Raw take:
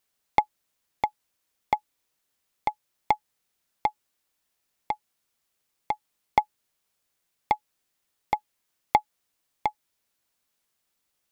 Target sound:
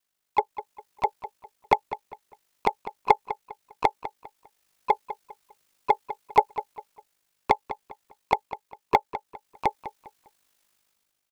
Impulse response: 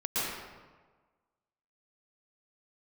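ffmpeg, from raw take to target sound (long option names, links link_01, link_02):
-filter_complex "[0:a]aeval=exprs='val(0)*sin(2*PI*25*n/s)':channel_layout=same,dynaudnorm=framelen=160:gausssize=7:maxgain=11dB,asplit=4[link_01][link_02][link_03][link_04];[link_02]asetrate=22050,aresample=44100,atempo=2,volume=-9dB[link_05];[link_03]asetrate=29433,aresample=44100,atempo=1.49831,volume=-17dB[link_06];[link_04]asetrate=52444,aresample=44100,atempo=0.840896,volume=-13dB[link_07];[link_01][link_05][link_06][link_07]amix=inputs=4:normalize=0,lowshelf=frequency=380:gain=-3,asplit=2[link_08][link_09];[link_09]adelay=201,lowpass=frequency=3800:poles=1,volume=-13dB,asplit=2[link_10][link_11];[link_11]adelay=201,lowpass=frequency=3800:poles=1,volume=0.31,asplit=2[link_12][link_13];[link_13]adelay=201,lowpass=frequency=3800:poles=1,volume=0.31[link_14];[link_10][link_12][link_14]amix=inputs=3:normalize=0[link_15];[link_08][link_15]amix=inputs=2:normalize=0,volume=-1dB"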